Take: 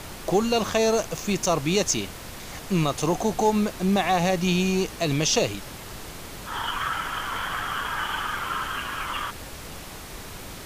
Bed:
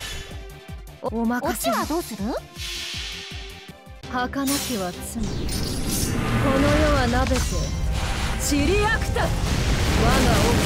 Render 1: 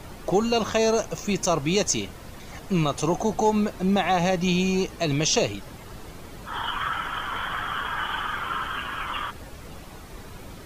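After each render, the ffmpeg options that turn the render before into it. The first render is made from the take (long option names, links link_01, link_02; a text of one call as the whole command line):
ffmpeg -i in.wav -af "afftdn=noise_reduction=9:noise_floor=-40" out.wav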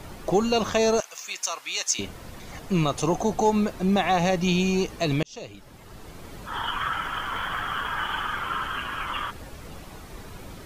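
ffmpeg -i in.wav -filter_complex "[0:a]asettb=1/sr,asplit=3[link_01][link_02][link_03];[link_01]atrim=end=1.004[link_04];[link_02]atrim=start=1:end=1.99,asetpts=PTS-STARTPTS,afade=type=in:duration=0.004:curve=qsin,afade=type=out:start_time=0.986:duration=0.004:curve=qsin,highpass=1400[link_05];[link_03]atrim=start=1.986[link_06];[link_04][link_05]acrossfade=duration=0.004:curve1=hsin:curve2=qsin[link_07];[link_07][link_06]acrossfade=duration=0.004:curve1=qsin:curve2=hsin,asettb=1/sr,asplit=3[link_08][link_09][link_10];[link_08]atrim=end=7.014[link_11];[link_09]atrim=start=7.01:end=8.27,asetpts=PTS-STARTPTS,afade=type=in:duration=0.004:curve=qsin,afade=type=out:start_time=1.256:duration=0.004:curve=qsin,acrusher=bits=9:mode=log:mix=0:aa=0.000001[link_12];[link_10]atrim=start=8.266[link_13];[link_11][link_12]acrossfade=duration=0.004:curve1=hsin:curve2=qsin[link_14];[link_14][link_13]acrossfade=duration=0.004:curve1=qsin:curve2=hsin,asplit=2[link_15][link_16];[link_15]atrim=end=5.23,asetpts=PTS-STARTPTS,afade=type=out:start_time=5.226:duration=0.004:curve=hsin[link_17];[link_16]atrim=start=5.23,asetpts=PTS-STARTPTS,afade=type=in:duration=1.09[link_18];[link_17][link_18]concat=n=2:v=0:a=1" out.wav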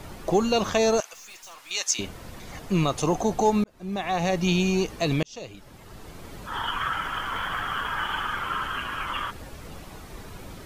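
ffmpeg -i in.wav -filter_complex "[0:a]asettb=1/sr,asplit=3[link_01][link_02][link_03];[link_01]atrim=end=1.134[link_04];[link_02]atrim=start=1.13:end=1.71,asetpts=PTS-STARTPTS,afade=type=in:duration=0.004:curve=qsin,afade=type=out:start_time=0.576:duration=0.004:curve=qsin,aeval=exprs='(tanh(141*val(0)+0.3)-tanh(0.3))/141':channel_layout=same[link_05];[link_03]atrim=start=1.706[link_06];[link_04][link_05]acrossfade=duration=0.004:curve1=hsin:curve2=qsin[link_07];[link_07][link_06]acrossfade=duration=0.004:curve1=qsin:curve2=hsin,asplit=2[link_08][link_09];[link_08]atrim=end=3.64,asetpts=PTS-STARTPTS,afade=type=out:start_time=3.636:duration=0.004:curve=hsin[link_10];[link_09]atrim=start=3.64,asetpts=PTS-STARTPTS,afade=type=in:duration=0.8[link_11];[link_10][link_11]concat=n=2:v=0:a=1" out.wav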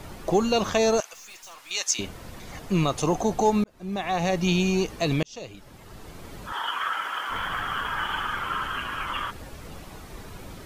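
ffmpeg -i in.wav -filter_complex "[0:a]asettb=1/sr,asplit=3[link_01][link_02][link_03];[link_01]atrim=end=6.524[link_04];[link_02]atrim=start=6.52:end=7.3,asetpts=PTS-STARTPTS,afade=type=in:duration=0.004:curve=qsin,afade=type=out:start_time=0.776:duration=0.004:curve=qsin,highpass=450[link_05];[link_03]atrim=start=7.296[link_06];[link_04][link_05]acrossfade=duration=0.004:curve1=hsin:curve2=qsin[link_07];[link_07][link_06]acrossfade=duration=0.004:curve1=qsin:curve2=hsin" out.wav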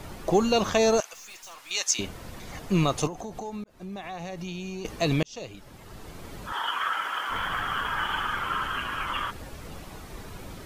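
ffmpeg -i in.wav -filter_complex "[0:a]asettb=1/sr,asplit=3[link_01][link_02][link_03];[link_01]atrim=end=3.074[link_04];[link_02]atrim=start=3.07:end=4.85,asetpts=PTS-STARTPTS,afade=type=in:duration=0.004:curve=qsin,afade=type=out:start_time=1.776:duration=0.004:curve=qsin,acompressor=threshold=-35dB:ratio=4:attack=3.2:release=140:knee=1:detection=peak[link_05];[link_03]atrim=start=4.846[link_06];[link_04][link_05]acrossfade=duration=0.004:curve1=hsin:curve2=qsin[link_07];[link_07][link_06]acrossfade=duration=0.004:curve1=qsin:curve2=hsin" out.wav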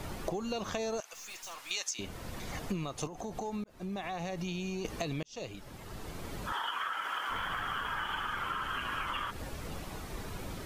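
ffmpeg -i in.wav -af "alimiter=limit=-16dB:level=0:latency=1:release=489,acompressor=threshold=-32dB:ratio=10" out.wav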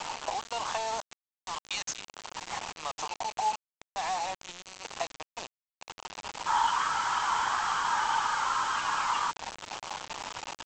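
ffmpeg -i in.wav -af "highpass=frequency=880:width_type=q:width=6,aresample=16000,acrusher=bits=5:mix=0:aa=0.000001,aresample=44100" out.wav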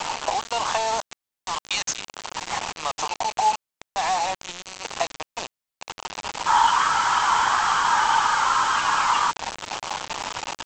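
ffmpeg -i in.wav -af "volume=8.5dB" out.wav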